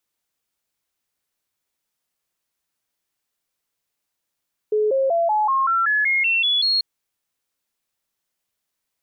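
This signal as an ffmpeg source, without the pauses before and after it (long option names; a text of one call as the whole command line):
ffmpeg -f lavfi -i "aevalsrc='0.158*clip(min(mod(t,0.19),0.19-mod(t,0.19))/0.005,0,1)*sin(2*PI*426*pow(2,floor(t/0.19)/3)*mod(t,0.19))':duration=2.09:sample_rate=44100" out.wav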